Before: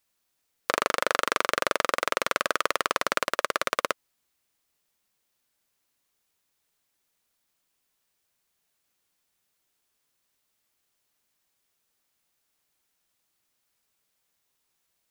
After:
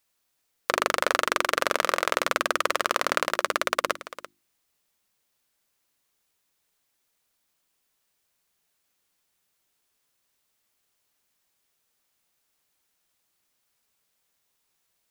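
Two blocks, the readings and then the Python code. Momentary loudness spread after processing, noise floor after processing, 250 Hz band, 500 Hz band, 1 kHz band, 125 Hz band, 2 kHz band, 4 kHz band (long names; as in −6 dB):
7 LU, −75 dBFS, +1.0 dB, +1.5 dB, +1.5 dB, +0.5 dB, +1.5 dB, +1.5 dB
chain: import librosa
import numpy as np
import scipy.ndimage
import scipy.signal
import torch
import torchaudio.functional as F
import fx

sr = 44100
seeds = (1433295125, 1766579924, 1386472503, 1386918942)

p1 = fx.hum_notches(x, sr, base_hz=50, count=7)
p2 = p1 + fx.echo_single(p1, sr, ms=339, db=-15.0, dry=0)
y = p2 * librosa.db_to_amplitude(1.5)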